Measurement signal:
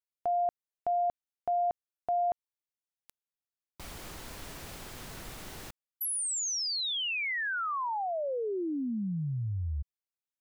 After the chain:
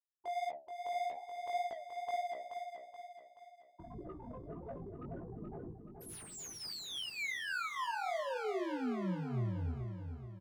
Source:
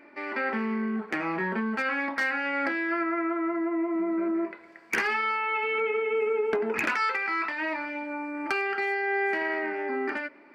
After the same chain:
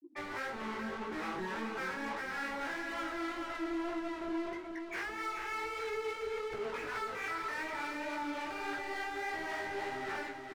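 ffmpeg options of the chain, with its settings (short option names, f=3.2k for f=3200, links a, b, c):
-filter_complex "[0:a]afftfilt=real='re*gte(hypot(re,im),0.0178)':imag='im*gte(hypot(re,im),0.0178)':win_size=1024:overlap=0.75,highshelf=f=2.2k:g=-6,alimiter=level_in=3.5dB:limit=-24dB:level=0:latency=1:release=151,volume=-3.5dB,flanger=delay=7.6:depth=9.1:regen=-70:speed=0.59:shape=triangular,asplit=2[a][b];[b]highpass=f=720:p=1,volume=33dB,asoftclip=type=tanh:threshold=-29dB[c];[a][c]amix=inputs=2:normalize=0,lowpass=f=2.1k:p=1,volume=-6dB,acrossover=split=500[d][e];[d]aeval=exprs='val(0)*(1-0.5/2+0.5/2*cos(2*PI*3.5*n/s))':c=same[f];[e]aeval=exprs='val(0)*(1-0.5/2-0.5/2*cos(2*PI*3.5*n/s))':c=same[g];[f][g]amix=inputs=2:normalize=0,flanger=delay=16:depth=5.4:speed=1.7,asplit=2[h][i];[i]aecho=0:1:428|856|1284|1712|2140|2568:0.473|0.222|0.105|0.0491|0.0231|0.0109[j];[h][j]amix=inputs=2:normalize=0,volume=1dB"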